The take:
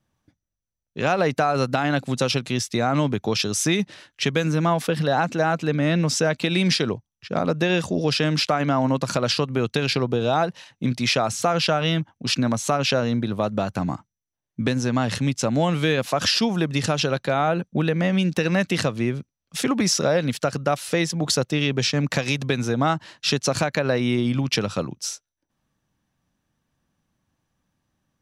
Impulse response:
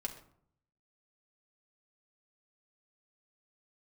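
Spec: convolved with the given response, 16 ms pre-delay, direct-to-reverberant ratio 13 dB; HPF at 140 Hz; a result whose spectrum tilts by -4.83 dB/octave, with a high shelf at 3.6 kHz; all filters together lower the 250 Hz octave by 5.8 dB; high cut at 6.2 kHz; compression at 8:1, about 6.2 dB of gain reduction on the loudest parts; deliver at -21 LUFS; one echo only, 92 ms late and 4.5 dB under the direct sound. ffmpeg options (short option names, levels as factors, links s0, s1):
-filter_complex "[0:a]highpass=140,lowpass=6200,equalizer=f=250:t=o:g=-7,highshelf=f=3600:g=-7.5,acompressor=threshold=0.0631:ratio=8,aecho=1:1:92:0.596,asplit=2[s0][s1];[1:a]atrim=start_sample=2205,adelay=16[s2];[s1][s2]afir=irnorm=-1:irlink=0,volume=0.237[s3];[s0][s3]amix=inputs=2:normalize=0,volume=2.37"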